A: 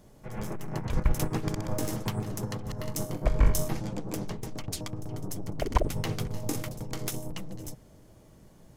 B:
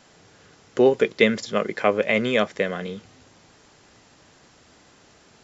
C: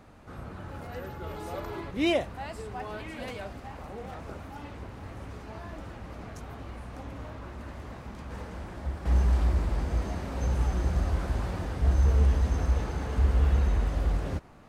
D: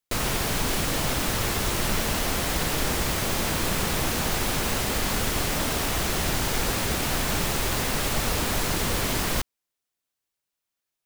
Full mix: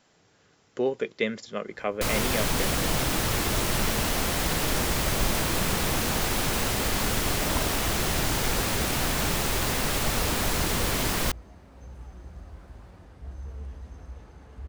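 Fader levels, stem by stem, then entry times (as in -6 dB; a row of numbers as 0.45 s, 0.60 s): -8.5 dB, -9.5 dB, -16.5 dB, -0.5 dB; 1.80 s, 0.00 s, 1.40 s, 1.90 s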